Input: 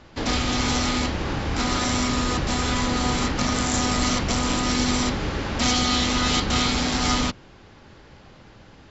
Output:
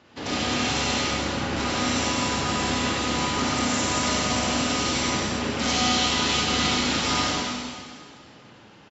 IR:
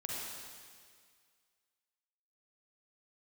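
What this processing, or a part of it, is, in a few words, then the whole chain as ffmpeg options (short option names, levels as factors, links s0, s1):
PA in a hall: -filter_complex "[0:a]highpass=130,equalizer=f=2800:t=o:w=0.35:g=3.5,aecho=1:1:99:0.398[s0];[1:a]atrim=start_sample=2205[s1];[s0][s1]afir=irnorm=-1:irlink=0,volume=0.75"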